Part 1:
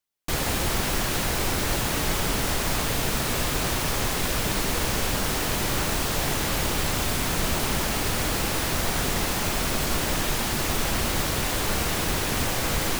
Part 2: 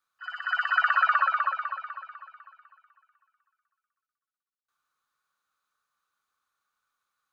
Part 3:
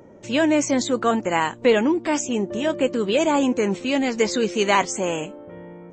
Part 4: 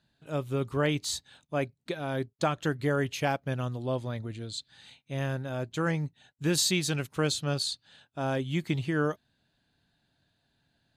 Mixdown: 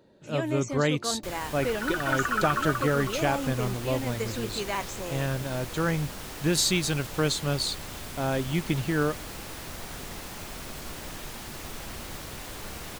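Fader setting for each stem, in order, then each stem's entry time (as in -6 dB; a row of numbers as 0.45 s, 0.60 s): -13.5 dB, -5.5 dB, -13.0 dB, +2.0 dB; 0.95 s, 1.35 s, 0.00 s, 0.00 s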